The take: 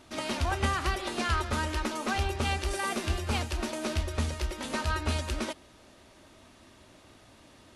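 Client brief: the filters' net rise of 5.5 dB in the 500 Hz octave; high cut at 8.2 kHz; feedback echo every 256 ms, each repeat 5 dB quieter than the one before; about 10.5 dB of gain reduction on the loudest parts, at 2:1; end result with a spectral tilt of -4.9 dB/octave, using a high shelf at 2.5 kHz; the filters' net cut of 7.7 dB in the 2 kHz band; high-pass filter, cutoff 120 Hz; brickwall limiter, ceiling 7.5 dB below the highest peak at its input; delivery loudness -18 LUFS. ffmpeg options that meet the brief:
-af "highpass=120,lowpass=8200,equalizer=f=500:t=o:g=8.5,equalizer=f=2000:t=o:g=-7.5,highshelf=f=2500:g=-7.5,acompressor=threshold=0.00501:ratio=2,alimiter=level_in=2.99:limit=0.0631:level=0:latency=1,volume=0.335,aecho=1:1:256|512|768|1024|1280|1536|1792:0.562|0.315|0.176|0.0988|0.0553|0.031|0.0173,volume=17.8"

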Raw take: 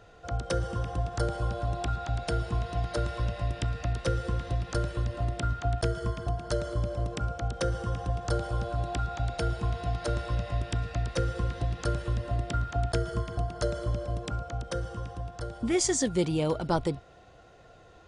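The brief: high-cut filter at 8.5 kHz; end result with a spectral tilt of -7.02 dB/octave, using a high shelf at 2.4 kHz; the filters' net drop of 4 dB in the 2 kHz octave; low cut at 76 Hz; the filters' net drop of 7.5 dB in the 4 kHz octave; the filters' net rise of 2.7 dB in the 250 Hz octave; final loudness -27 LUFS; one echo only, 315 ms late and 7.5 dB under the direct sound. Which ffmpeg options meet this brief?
-af "highpass=76,lowpass=8500,equalizer=f=250:t=o:g=4.5,equalizer=f=2000:t=o:g=-3,highshelf=f=2400:g=-4.5,equalizer=f=4000:t=o:g=-4.5,aecho=1:1:315:0.422,volume=1.68"

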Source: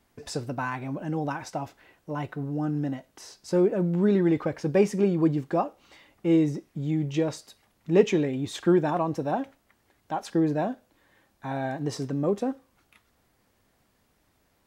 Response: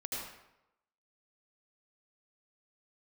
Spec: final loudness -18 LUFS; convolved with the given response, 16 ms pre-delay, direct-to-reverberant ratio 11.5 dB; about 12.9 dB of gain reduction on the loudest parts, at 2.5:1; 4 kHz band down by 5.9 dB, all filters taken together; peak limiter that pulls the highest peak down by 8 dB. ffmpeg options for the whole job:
-filter_complex "[0:a]equalizer=f=4000:t=o:g=-8,acompressor=threshold=0.0224:ratio=2.5,alimiter=level_in=1.58:limit=0.0631:level=0:latency=1,volume=0.631,asplit=2[s0][s1];[1:a]atrim=start_sample=2205,adelay=16[s2];[s1][s2]afir=irnorm=-1:irlink=0,volume=0.211[s3];[s0][s3]amix=inputs=2:normalize=0,volume=9.44"

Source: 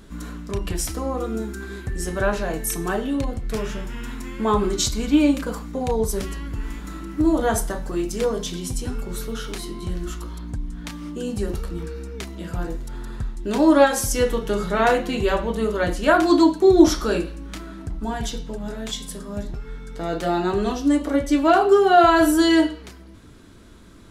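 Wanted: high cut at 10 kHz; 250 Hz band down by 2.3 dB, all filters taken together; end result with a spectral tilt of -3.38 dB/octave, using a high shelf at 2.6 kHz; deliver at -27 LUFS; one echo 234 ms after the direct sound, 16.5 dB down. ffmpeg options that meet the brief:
-af "lowpass=10000,equalizer=f=250:t=o:g=-3.5,highshelf=f=2600:g=8.5,aecho=1:1:234:0.15,volume=0.531"

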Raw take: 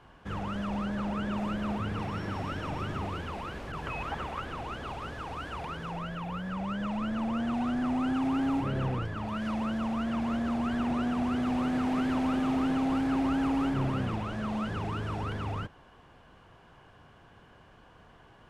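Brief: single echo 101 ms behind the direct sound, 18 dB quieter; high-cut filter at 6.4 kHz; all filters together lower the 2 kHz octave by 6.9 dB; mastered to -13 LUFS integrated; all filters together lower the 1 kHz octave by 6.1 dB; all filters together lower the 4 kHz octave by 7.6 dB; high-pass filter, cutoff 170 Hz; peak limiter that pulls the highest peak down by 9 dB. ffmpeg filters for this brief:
-af "highpass=170,lowpass=6400,equalizer=f=1000:t=o:g=-6.5,equalizer=f=2000:t=o:g=-5,equalizer=f=4000:t=o:g=-8,alimiter=level_in=2.11:limit=0.0631:level=0:latency=1,volume=0.473,aecho=1:1:101:0.126,volume=18.8"

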